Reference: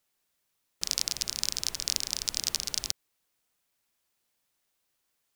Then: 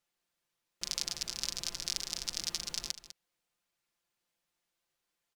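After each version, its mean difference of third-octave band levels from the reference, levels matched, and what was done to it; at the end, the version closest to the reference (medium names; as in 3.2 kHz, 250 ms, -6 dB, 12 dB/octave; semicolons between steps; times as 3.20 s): 3.0 dB: treble shelf 8.8 kHz -10 dB; comb 5.8 ms, depth 52%; delay 200 ms -13.5 dB; trim -4.5 dB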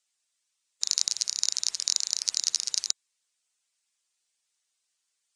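12.5 dB: coarse spectral quantiser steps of 15 dB; steep low-pass 8.7 kHz 36 dB/octave; tilt EQ +4.5 dB/octave; trim -7 dB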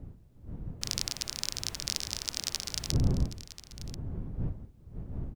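4.0 dB: wind noise 120 Hz -36 dBFS; treble shelf 4.3 kHz -6.5 dB; on a send: delay 1037 ms -14 dB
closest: first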